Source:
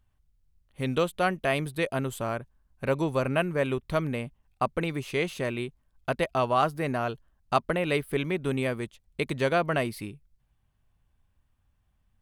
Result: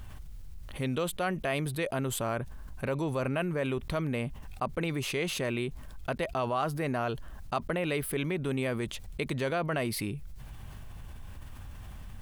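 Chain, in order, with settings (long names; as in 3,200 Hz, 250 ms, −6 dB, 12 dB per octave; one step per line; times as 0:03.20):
envelope flattener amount 70%
level −8.5 dB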